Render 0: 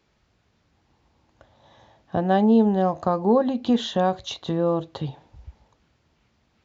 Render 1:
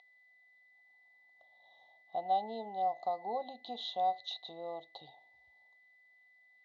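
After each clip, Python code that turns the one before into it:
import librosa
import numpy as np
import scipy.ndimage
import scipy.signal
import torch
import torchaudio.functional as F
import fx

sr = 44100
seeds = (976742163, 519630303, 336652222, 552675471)

y = x + 10.0 ** (-27.0 / 20.0) * np.sin(2.0 * np.pi * 2000.0 * np.arange(len(x)) / sr)
y = fx.double_bandpass(y, sr, hz=1700.0, octaves=2.4)
y = fx.dynamic_eq(y, sr, hz=2000.0, q=0.87, threshold_db=-43.0, ratio=4.0, max_db=4)
y = F.gain(torch.from_numpy(y), -5.5).numpy()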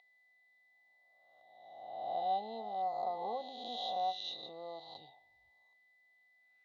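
y = fx.spec_swells(x, sr, rise_s=1.43)
y = F.gain(torch.from_numpy(y), -4.5).numpy()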